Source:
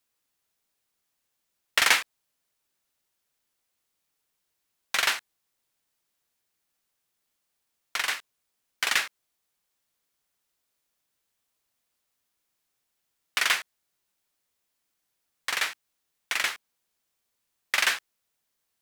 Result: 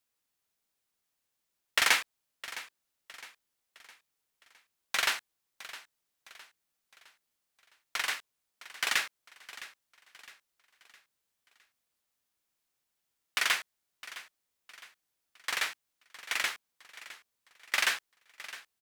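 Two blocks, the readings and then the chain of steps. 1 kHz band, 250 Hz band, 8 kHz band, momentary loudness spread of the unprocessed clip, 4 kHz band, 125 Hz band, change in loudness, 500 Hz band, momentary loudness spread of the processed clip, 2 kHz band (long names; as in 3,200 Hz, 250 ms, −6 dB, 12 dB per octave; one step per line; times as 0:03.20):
−4.0 dB, −4.0 dB, −4.0 dB, 12 LU, −4.0 dB, can't be measured, −5.0 dB, −4.0 dB, 21 LU, −4.0 dB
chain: repeating echo 661 ms, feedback 44%, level −16.5 dB
level −4 dB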